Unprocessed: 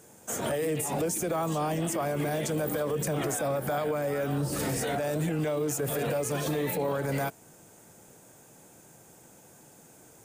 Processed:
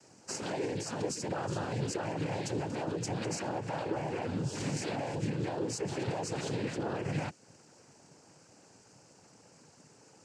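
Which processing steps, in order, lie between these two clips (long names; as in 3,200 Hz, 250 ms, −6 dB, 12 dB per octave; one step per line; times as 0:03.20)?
cochlear-implant simulation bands 8
dynamic equaliser 890 Hz, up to −5 dB, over −44 dBFS, Q 0.8
level −3 dB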